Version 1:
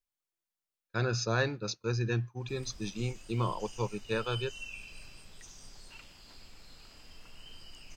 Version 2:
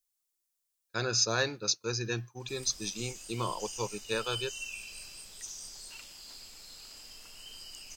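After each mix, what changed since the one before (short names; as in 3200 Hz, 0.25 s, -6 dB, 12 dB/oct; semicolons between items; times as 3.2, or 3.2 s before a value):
master: add tone controls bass -7 dB, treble +13 dB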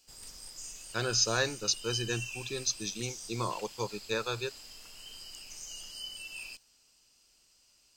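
background: entry -2.40 s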